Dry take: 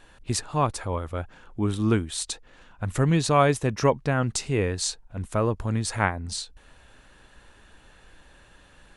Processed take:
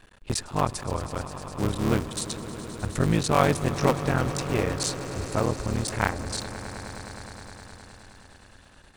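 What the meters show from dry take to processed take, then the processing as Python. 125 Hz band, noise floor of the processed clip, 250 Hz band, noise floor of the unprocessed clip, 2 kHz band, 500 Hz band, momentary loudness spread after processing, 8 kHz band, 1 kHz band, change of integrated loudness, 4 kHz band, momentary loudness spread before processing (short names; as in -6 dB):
-1.5 dB, -54 dBFS, -0.5 dB, -55 dBFS, -0.5 dB, -1.5 dB, 16 LU, -1.0 dB, -0.5 dB, -1.5 dB, -0.5 dB, 13 LU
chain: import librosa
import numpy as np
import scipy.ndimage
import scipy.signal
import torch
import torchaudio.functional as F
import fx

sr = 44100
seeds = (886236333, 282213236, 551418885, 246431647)

y = fx.cycle_switch(x, sr, every=3, mode='muted')
y = fx.vibrato(y, sr, rate_hz=1.7, depth_cents=11.0)
y = fx.echo_swell(y, sr, ms=104, loudest=5, wet_db=-17)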